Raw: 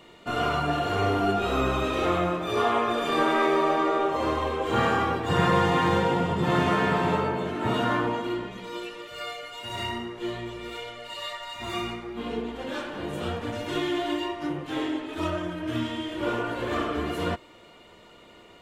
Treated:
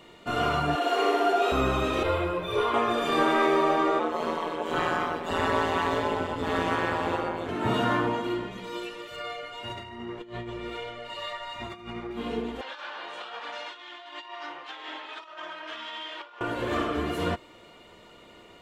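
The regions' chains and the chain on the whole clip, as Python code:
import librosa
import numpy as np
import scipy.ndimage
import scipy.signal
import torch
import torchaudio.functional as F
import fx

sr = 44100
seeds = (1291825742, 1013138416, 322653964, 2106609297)

y = fx.chain(x, sr, fx.steep_highpass(hz=280.0, slope=48),
    fx.room_flutter(wall_m=10.6, rt60_s=1.0), at=(0.75, 1.52))
y = fx.chain(y, sr, fx.peak_eq(hz=6600.0, db=-10.0, octaves=0.4),
    fx.comb(ms=2.0, depth=0.71),
    fx.ensemble(), at=(2.03, 2.74))
y = fx.chain(y, sr, fx.highpass(hz=230.0, slope=12),
    fx.ring_mod(carrier_hz=83.0), at=(3.99, 7.49))
y = fx.chain(y, sr, fx.lowpass(hz=2500.0, slope=6),
    fx.over_compress(threshold_db=-36.0, ratio=-0.5), at=(9.16, 12.11))
y = fx.chain(y, sr, fx.cheby1_bandpass(low_hz=910.0, high_hz=4600.0, order=2),
    fx.over_compress(threshold_db=-39.0, ratio=-0.5), at=(12.61, 16.41))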